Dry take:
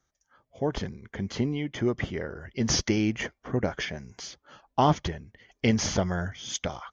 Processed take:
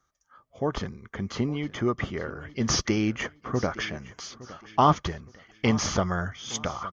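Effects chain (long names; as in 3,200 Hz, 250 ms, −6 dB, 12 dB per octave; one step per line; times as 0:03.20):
parametric band 1,200 Hz +12 dB 0.34 octaves
on a send: repeating echo 864 ms, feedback 32%, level −18.5 dB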